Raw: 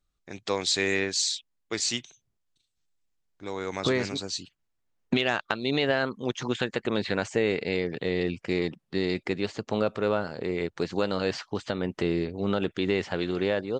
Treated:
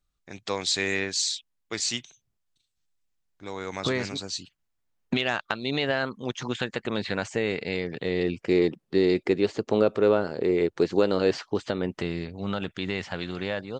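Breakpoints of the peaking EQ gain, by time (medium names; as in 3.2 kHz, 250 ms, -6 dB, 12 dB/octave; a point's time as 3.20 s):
peaking EQ 380 Hz 1.1 oct
7.88 s -3 dB
8.58 s +8 dB
11.40 s +8 dB
11.89 s +1.5 dB
12.12 s -8 dB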